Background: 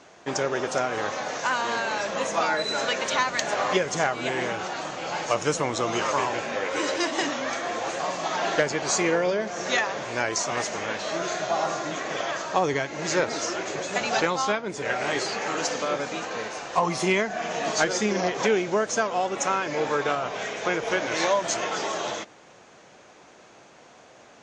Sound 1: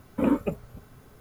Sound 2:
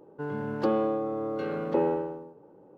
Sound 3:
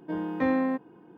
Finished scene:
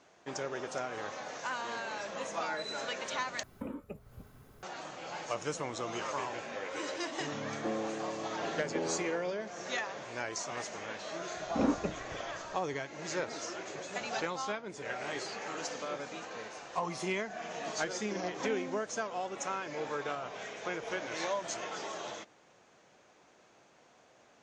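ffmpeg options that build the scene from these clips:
ffmpeg -i bed.wav -i cue0.wav -i cue1.wav -i cue2.wav -filter_complex "[1:a]asplit=2[link_01][link_02];[0:a]volume=-11.5dB[link_03];[link_01]acompressor=threshold=-38dB:ratio=5:attack=72:release=246:knee=1:detection=rms[link_04];[2:a]tiltshelf=frequency=970:gain=6.5[link_05];[link_02]lowpass=frequency=5000:width=0.5412,lowpass=frequency=5000:width=1.3066[link_06];[link_03]asplit=2[link_07][link_08];[link_07]atrim=end=3.434[link_09];[link_04]atrim=end=1.2,asetpts=PTS-STARTPTS,volume=-5dB[link_10];[link_08]atrim=start=4.626[link_11];[link_05]atrim=end=2.77,asetpts=PTS-STARTPTS,volume=-14.5dB,afade=type=in:duration=0.004:curve=hsin,afade=type=out:start_time=2.766:duration=0.004:curve=hsin,adelay=7010[link_12];[link_06]atrim=end=1.2,asetpts=PTS-STARTPTS,volume=-6.5dB,afade=type=in:duration=0.004:curve=hsin,afade=type=out:start_time=1.196:duration=0.004:curve=hsin,adelay=11370[link_13];[3:a]atrim=end=1.17,asetpts=PTS-STARTPTS,volume=-16.5dB,afade=type=in:duration=0.004:curve=hsin,afade=type=out:start_time=1.166:duration=0.004:curve=hsin,adelay=18020[link_14];[link_09][link_10]acrossfade=duration=0.004:curve1=hsin:curve2=hsin[link_15];[link_15][link_11]acrossfade=duration=0.004:curve1=hsin:curve2=hsin[link_16];[link_16][link_12][link_13][link_14]amix=inputs=4:normalize=0" out.wav

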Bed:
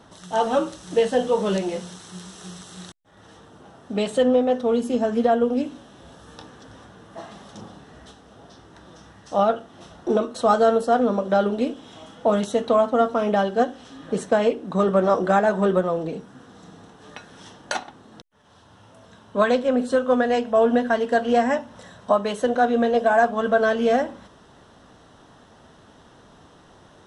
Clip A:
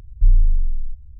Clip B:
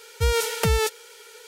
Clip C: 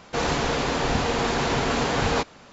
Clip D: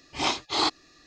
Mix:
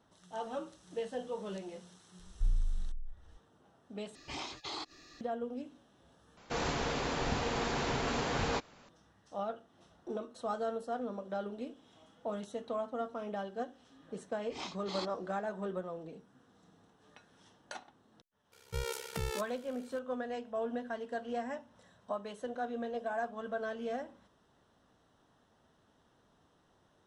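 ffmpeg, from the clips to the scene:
ffmpeg -i bed.wav -i cue0.wav -i cue1.wav -i cue2.wav -i cue3.wav -filter_complex "[4:a]asplit=2[link_01][link_02];[0:a]volume=-18.5dB[link_03];[link_01]acompressor=threshold=-39dB:ratio=6:attack=3.2:release=140:knee=1:detection=peak[link_04];[2:a]tremolo=f=67:d=0.857[link_05];[link_03]asplit=3[link_06][link_07][link_08];[link_06]atrim=end=4.154[link_09];[link_04]atrim=end=1.06[link_10];[link_07]atrim=start=5.206:end=6.374[link_11];[3:a]atrim=end=2.52,asetpts=PTS-STARTPTS,volume=-10dB[link_12];[link_08]atrim=start=8.886[link_13];[1:a]atrim=end=1.19,asetpts=PTS-STARTPTS,volume=-17dB,afade=type=in:duration=0.004:curve=hsin,afade=type=out:start_time=1.186:duration=0.004:curve=hsin,adelay=2190[link_14];[link_02]atrim=end=1.06,asetpts=PTS-STARTPTS,volume=-17dB,afade=type=in:duration=0.004:curve=hsin,afade=type=out:start_time=1.056:duration=0.004:curve=hsin,adelay=14360[link_15];[link_05]atrim=end=1.47,asetpts=PTS-STARTPTS,volume=-12dB,afade=type=in:duration=0.004:curve=hsin,afade=type=out:start_time=1.466:duration=0.004:curve=hsin,adelay=18520[link_16];[link_09][link_10]acrossfade=duration=0.004:curve1=hsin:curve2=hsin[link_17];[link_17][link_11]acrossfade=duration=0.004:curve1=hsin:curve2=hsin[link_18];[link_18][link_12]acrossfade=duration=0.004:curve1=hsin:curve2=hsin[link_19];[link_19][link_13]acrossfade=duration=0.004:curve1=hsin:curve2=hsin[link_20];[link_20][link_14][link_15][link_16]amix=inputs=4:normalize=0" out.wav

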